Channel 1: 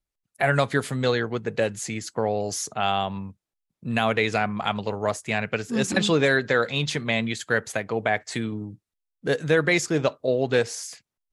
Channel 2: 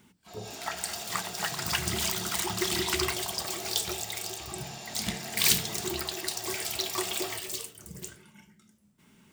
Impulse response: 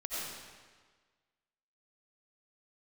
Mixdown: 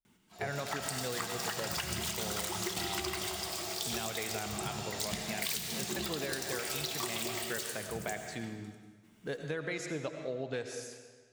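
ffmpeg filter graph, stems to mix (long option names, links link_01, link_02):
-filter_complex "[0:a]volume=-14.5dB,asplit=3[link_01][link_02][link_03];[link_02]volume=-8.5dB[link_04];[1:a]adelay=50,volume=-2dB,asplit=2[link_05][link_06];[link_06]volume=-7dB[link_07];[link_03]apad=whole_len=417758[link_08];[link_05][link_08]sidechaingate=range=-9dB:threshold=-52dB:ratio=16:detection=peak[link_09];[2:a]atrim=start_sample=2205[link_10];[link_04][link_07]amix=inputs=2:normalize=0[link_11];[link_11][link_10]afir=irnorm=-1:irlink=0[link_12];[link_01][link_09][link_12]amix=inputs=3:normalize=0,acompressor=threshold=-32dB:ratio=10"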